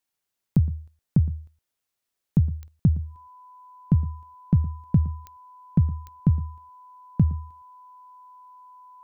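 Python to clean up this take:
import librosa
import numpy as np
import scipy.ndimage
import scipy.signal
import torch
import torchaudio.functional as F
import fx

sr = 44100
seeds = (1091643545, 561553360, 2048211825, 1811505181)

y = fx.fix_declick_ar(x, sr, threshold=10.0)
y = fx.notch(y, sr, hz=1000.0, q=30.0)
y = fx.fix_echo_inverse(y, sr, delay_ms=114, level_db=-18.0)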